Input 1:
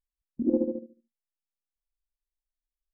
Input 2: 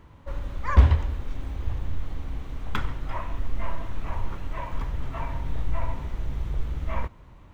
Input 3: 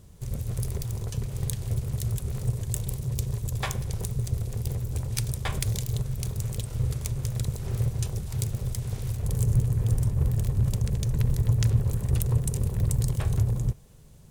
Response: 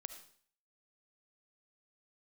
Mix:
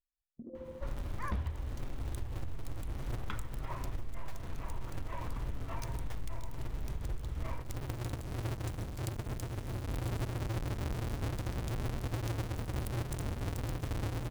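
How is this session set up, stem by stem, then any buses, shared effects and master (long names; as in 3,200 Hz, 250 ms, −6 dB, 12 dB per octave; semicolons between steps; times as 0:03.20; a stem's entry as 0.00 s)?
−12.0 dB, 0.00 s, send −3.5 dB, downward compressor 5 to 1, threshold −32 dBFS, peak gain reduction 12 dB; comb filter 1.7 ms
−4.0 dB, 0.55 s, send −7.5 dB, wave folding −9.5 dBFS
−12.0 dB, 0.65 s, no send, each half-wave held at its own peak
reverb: on, RT60 0.50 s, pre-delay 30 ms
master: downward compressor 6 to 1, threshold −33 dBFS, peak gain reduction 17 dB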